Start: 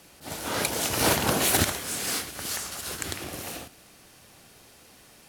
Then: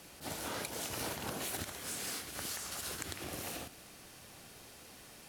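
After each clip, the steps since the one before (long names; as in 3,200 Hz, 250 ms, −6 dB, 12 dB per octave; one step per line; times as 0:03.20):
downward compressor 6 to 1, threshold −37 dBFS, peak gain reduction 18 dB
level −1 dB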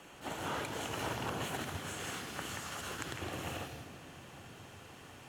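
convolution reverb RT60 3.5 s, pre-delay 132 ms, DRR 8.5 dB
level −3 dB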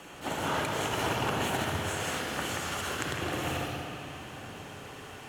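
spring reverb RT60 3.1 s, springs 58 ms, chirp 70 ms, DRR 2.5 dB
level +6.5 dB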